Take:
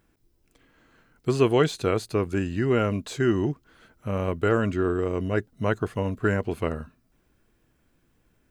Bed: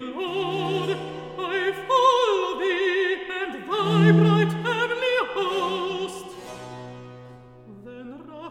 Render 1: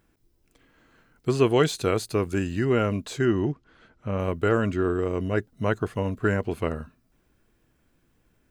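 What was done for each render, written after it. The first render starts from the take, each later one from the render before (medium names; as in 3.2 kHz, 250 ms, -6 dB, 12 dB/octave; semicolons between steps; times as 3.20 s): 1.56–2.65 s: treble shelf 4.9 kHz +6.5 dB; 3.25–4.19 s: distance through air 91 m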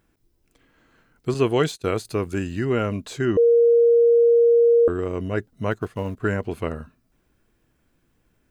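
1.34–2.05 s: expander -28 dBFS; 3.37–4.88 s: bleep 469 Hz -12 dBFS; 5.71–6.20 s: companding laws mixed up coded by A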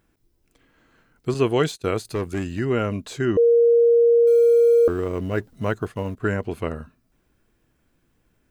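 2.12–2.59 s: overload inside the chain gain 20 dB; 4.27–5.92 s: companding laws mixed up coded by mu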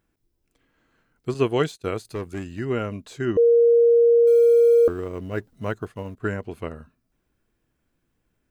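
upward expansion 1.5:1, over -28 dBFS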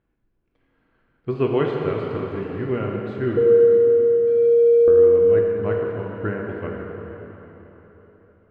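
distance through air 380 m; plate-style reverb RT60 4 s, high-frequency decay 0.85×, DRR -1 dB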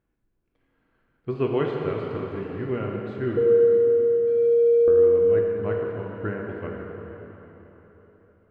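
trim -3.5 dB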